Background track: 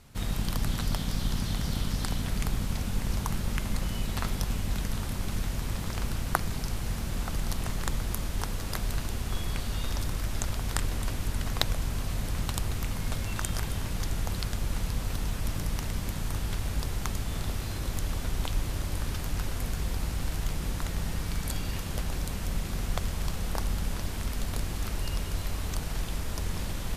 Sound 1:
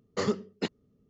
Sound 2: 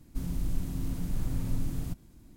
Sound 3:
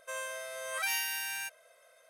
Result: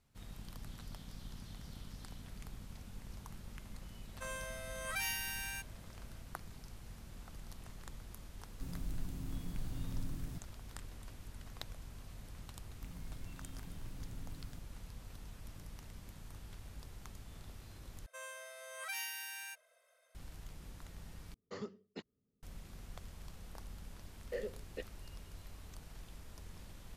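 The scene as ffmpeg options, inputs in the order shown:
ffmpeg -i bed.wav -i cue0.wav -i cue1.wav -i cue2.wav -filter_complex "[3:a]asplit=2[link_01][link_02];[2:a]asplit=2[link_03][link_04];[1:a]asplit=2[link_05][link_06];[0:a]volume=-19.5dB[link_07];[link_02]lowshelf=frequency=250:gain=-10[link_08];[link_05]acrossover=split=5700[link_09][link_10];[link_10]acompressor=threshold=-51dB:ratio=4:attack=1:release=60[link_11];[link_09][link_11]amix=inputs=2:normalize=0[link_12];[link_06]asplit=3[link_13][link_14][link_15];[link_13]bandpass=frequency=530:width_type=q:width=8,volume=0dB[link_16];[link_14]bandpass=frequency=1840:width_type=q:width=8,volume=-6dB[link_17];[link_15]bandpass=frequency=2480:width_type=q:width=8,volume=-9dB[link_18];[link_16][link_17][link_18]amix=inputs=3:normalize=0[link_19];[link_07]asplit=3[link_20][link_21][link_22];[link_20]atrim=end=18.064[link_23];[link_08]atrim=end=2.09,asetpts=PTS-STARTPTS,volume=-9dB[link_24];[link_21]atrim=start=20.146:end=21.344[link_25];[link_12]atrim=end=1.09,asetpts=PTS-STARTPTS,volume=-16.5dB[link_26];[link_22]atrim=start=22.426[link_27];[link_01]atrim=end=2.09,asetpts=PTS-STARTPTS,volume=-5.5dB,afade=type=in:duration=0.004:curve=hsin,afade=type=out:start_time=2.086:duration=0.004:curve=hsin,adelay=182133S[link_28];[link_03]atrim=end=2.36,asetpts=PTS-STARTPTS,volume=-10dB,afade=type=in:duration=0.004:curve=hsin,afade=type=out:start_time=2.356:duration=0.004:curve=hsin,adelay=8450[link_29];[link_04]atrim=end=2.36,asetpts=PTS-STARTPTS,volume=-18dB,afade=type=in:duration=0.004:curve=hsin,afade=type=out:start_time=2.356:duration=0.004:curve=hsin,adelay=12660[link_30];[link_19]atrim=end=1.09,asetpts=PTS-STARTPTS,volume=-2dB,afade=type=in:duration=0.004:curve=hsin,afade=type=out:start_time=1.086:duration=0.004:curve=hsin,adelay=24150[link_31];[link_23][link_24]acrossfade=duration=0.004:curve1=hsin:curve2=hsin[link_32];[link_32][link_25]acrossfade=duration=0.004:curve1=hsin:curve2=hsin[link_33];[link_33][link_26]acrossfade=duration=0.004:curve1=hsin:curve2=hsin[link_34];[link_34][link_27]acrossfade=duration=0.004:curve1=hsin:curve2=hsin[link_35];[link_35][link_28][link_29][link_30][link_31]amix=inputs=5:normalize=0" out.wav

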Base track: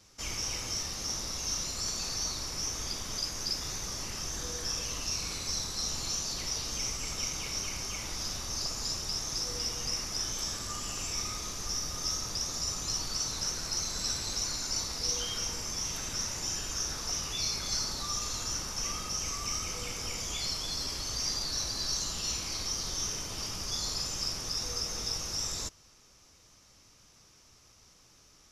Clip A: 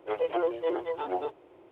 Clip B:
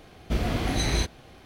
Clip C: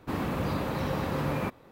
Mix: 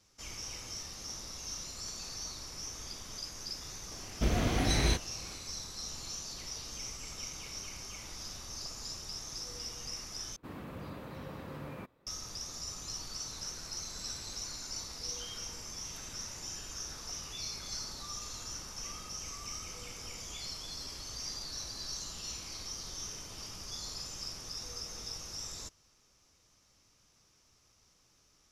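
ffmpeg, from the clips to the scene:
ffmpeg -i bed.wav -i cue0.wav -i cue1.wav -i cue2.wav -filter_complex "[0:a]volume=-8dB[link_01];[3:a]equalizer=frequency=810:width=4:gain=-3[link_02];[link_01]asplit=2[link_03][link_04];[link_03]atrim=end=10.364[link_05];[link_02]atrim=end=1.71,asetpts=PTS-STARTPTS,volume=-14dB[link_06];[link_04]atrim=start=12.066[link_07];[2:a]atrim=end=1.45,asetpts=PTS-STARTPTS,volume=-3dB,afade=type=in:duration=0.004:curve=hsin,afade=type=out:start_time=1.446:duration=0.004:curve=hsin,adelay=3910[link_08];[link_05][link_06]acrossfade=duration=0.004:curve1=hsin:curve2=hsin[link_09];[link_09][link_07]acrossfade=duration=0.004:curve1=hsin:curve2=hsin[link_10];[link_10][link_08]amix=inputs=2:normalize=0" out.wav

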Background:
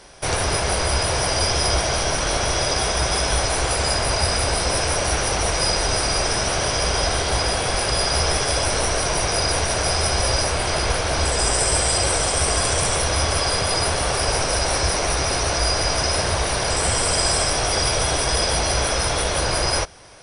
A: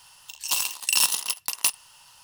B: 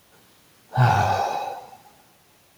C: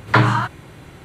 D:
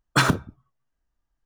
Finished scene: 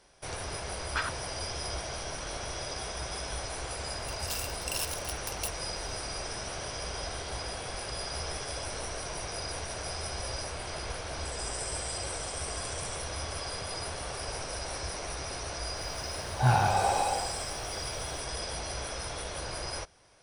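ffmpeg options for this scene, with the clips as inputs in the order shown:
ffmpeg -i bed.wav -i cue0.wav -i cue1.wav -i cue2.wav -i cue3.wav -filter_complex "[0:a]volume=-16dB[link_01];[4:a]bandpass=frequency=1800:width_type=q:width=0.98:csg=0[link_02];[1:a]dynaudnorm=framelen=160:gausssize=3:maxgain=11.5dB[link_03];[2:a]dynaudnorm=framelen=110:gausssize=3:maxgain=11.5dB[link_04];[link_02]atrim=end=1.45,asetpts=PTS-STARTPTS,volume=-10dB,afade=type=in:duration=0.004:curve=hsin,afade=type=out:start_time=1.446:duration=0.004:curve=hsin,adelay=790[link_05];[link_03]atrim=end=2.23,asetpts=PTS-STARTPTS,volume=-17dB,afade=type=in:duration=0.004:curve=hsin,afade=type=out:start_time=2.226:duration=0.004:curve=hsin,adelay=3790[link_06];[link_04]atrim=end=2.57,asetpts=PTS-STARTPTS,volume=-11dB,afade=type=in:duration=0.004:curve=hsin,afade=type=out:start_time=2.566:duration=0.004:curve=hsin,adelay=15650[link_07];[link_01][link_05][link_06][link_07]amix=inputs=4:normalize=0" out.wav

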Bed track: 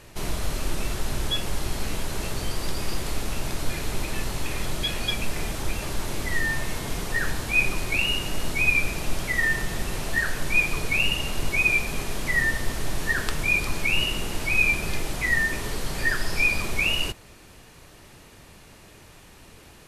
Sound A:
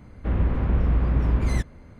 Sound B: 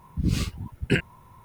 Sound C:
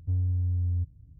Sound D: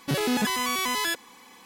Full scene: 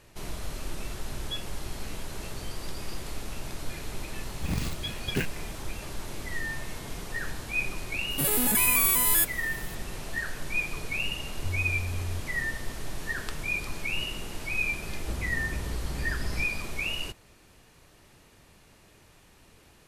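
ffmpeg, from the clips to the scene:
ffmpeg -i bed.wav -i cue0.wav -i cue1.wav -i cue2.wav -i cue3.wav -filter_complex "[0:a]volume=-8dB[link_01];[2:a]acrusher=bits=2:mode=log:mix=0:aa=0.000001[link_02];[4:a]aexciter=amount=12.4:drive=3.1:freq=8100[link_03];[3:a]highpass=47[link_04];[1:a]acompressor=threshold=-37dB:ratio=4:attack=58:release=41:knee=1:detection=peak[link_05];[link_02]atrim=end=1.44,asetpts=PTS-STARTPTS,volume=-7.5dB,afade=type=in:duration=0.004:curve=hsin,afade=type=out:start_time=1.436:duration=0.004:curve=hsin,adelay=187425S[link_06];[link_03]atrim=end=1.65,asetpts=PTS-STARTPTS,volume=-5.5dB,afade=type=in:duration=0.004:curve=hsin,afade=type=out:start_time=1.646:duration=0.004:curve=hsin,adelay=357210S[link_07];[link_04]atrim=end=1.19,asetpts=PTS-STARTPTS,volume=-6dB,afade=type=in:duration=0.004:curve=hsin,afade=type=out:start_time=1.186:duration=0.004:curve=hsin,adelay=11360[link_08];[link_05]atrim=end=1.99,asetpts=PTS-STARTPTS,volume=-2.5dB,afade=type=in:duration=0.004:curve=hsin,afade=type=out:start_time=1.986:duration=0.004:curve=hsin,adelay=14830[link_09];[link_01][link_06][link_07][link_08][link_09]amix=inputs=5:normalize=0" out.wav

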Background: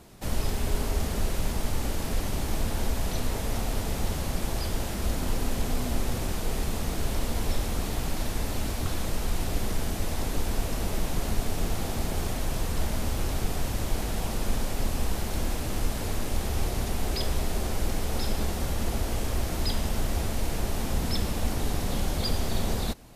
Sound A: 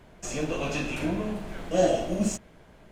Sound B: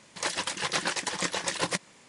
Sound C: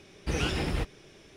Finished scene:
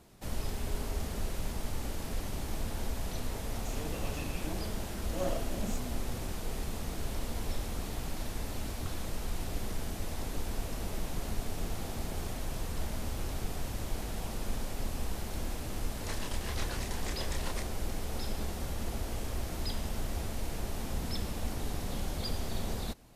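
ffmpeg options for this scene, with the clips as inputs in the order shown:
ffmpeg -i bed.wav -i cue0.wav -i cue1.wav -filter_complex "[0:a]volume=-7.5dB[link_01];[1:a]aeval=exprs='if(lt(val(0),0),0.447*val(0),val(0))':channel_layout=same[link_02];[2:a]asplit=2[link_03][link_04];[link_04]adelay=28,volume=-3dB[link_05];[link_03][link_05]amix=inputs=2:normalize=0[link_06];[link_02]atrim=end=2.91,asetpts=PTS-STARTPTS,volume=-10.5dB,afade=type=in:duration=0.004:curve=hsin,afade=type=out:start_time=2.906:duration=0.004:curve=hsin,adelay=3420[link_07];[link_06]atrim=end=2.08,asetpts=PTS-STARTPTS,volume=-14.5dB,afade=type=in:duration=0.004:curve=hsin,afade=type=out:start_time=2.076:duration=0.004:curve=hsin,adelay=15840[link_08];[link_01][link_07][link_08]amix=inputs=3:normalize=0" out.wav

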